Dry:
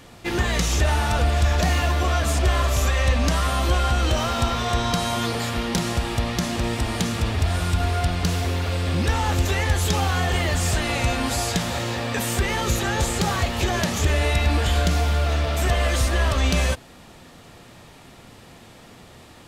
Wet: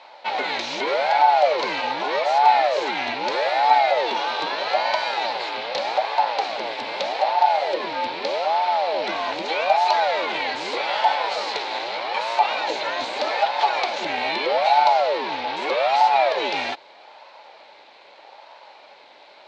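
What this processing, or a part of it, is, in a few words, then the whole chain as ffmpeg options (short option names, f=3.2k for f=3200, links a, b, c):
voice changer toy: -af "aeval=exprs='val(0)*sin(2*PI*490*n/s+490*0.65/0.81*sin(2*PI*0.81*n/s))':c=same,highpass=580,equalizer=f=580:t=q:w=4:g=7,equalizer=f=860:t=q:w=4:g=10,equalizer=f=1.2k:t=q:w=4:g=-3,equalizer=f=2.3k:t=q:w=4:g=6,equalizer=f=4.1k:t=q:w=4:g=8,lowpass=f=4.7k:w=0.5412,lowpass=f=4.7k:w=1.3066"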